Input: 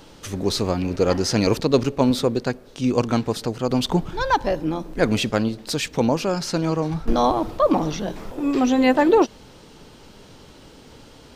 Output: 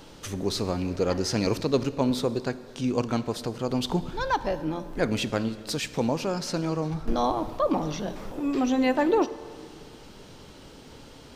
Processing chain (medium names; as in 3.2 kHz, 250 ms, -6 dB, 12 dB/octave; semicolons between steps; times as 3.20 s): in parallel at 0 dB: compression, threshold -33 dBFS, peak gain reduction 19.5 dB; on the sum: plate-style reverb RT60 2 s, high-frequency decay 0.8×, DRR 13.5 dB; trim -7.5 dB